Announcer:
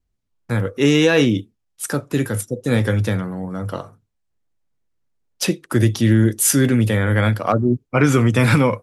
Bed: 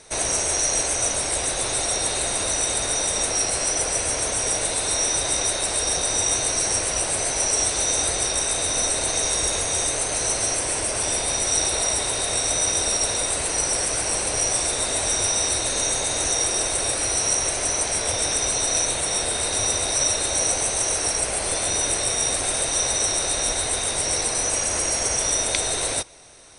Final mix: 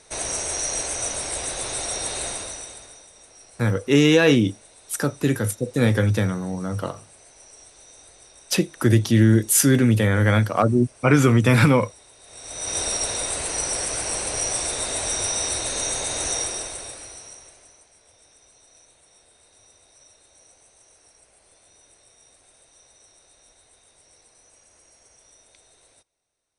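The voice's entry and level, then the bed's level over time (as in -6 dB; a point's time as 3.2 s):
3.10 s, -1.0 dB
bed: 2.28 s -4.5 dB
3.1 s -26.5 dB
12.19 s -26.5 dB
12.77 s -3 dB
16.36 s -3 dB
17.9 s -32.5 dB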